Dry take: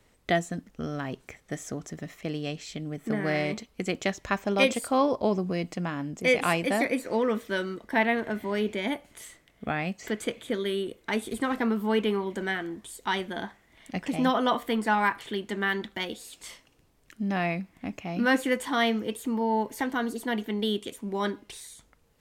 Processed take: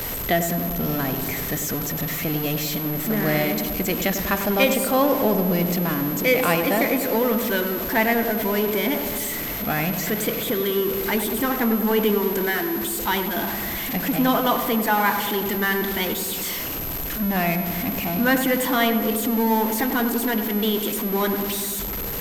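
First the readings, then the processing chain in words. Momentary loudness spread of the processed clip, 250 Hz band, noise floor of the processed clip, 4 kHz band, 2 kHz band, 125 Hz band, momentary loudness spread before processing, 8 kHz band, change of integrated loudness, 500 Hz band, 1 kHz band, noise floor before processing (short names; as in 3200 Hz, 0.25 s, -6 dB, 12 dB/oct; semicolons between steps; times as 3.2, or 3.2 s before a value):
6 LU, +6.5 dB, -28 dBFS, +6.5 dB, +5.0 dB, +8.0 dB, 13 LU, +12.5 dB, +7.0 dB, +6.0 dB, +5.5 dB, -64 dBFS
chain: zero-crossing step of -28 dBFS; whine 12000 Hz -31 dBFS; darkening echo 98 ms, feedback 77%, low-pass 1600 Hz, level -7.5 dB; gain +2 dB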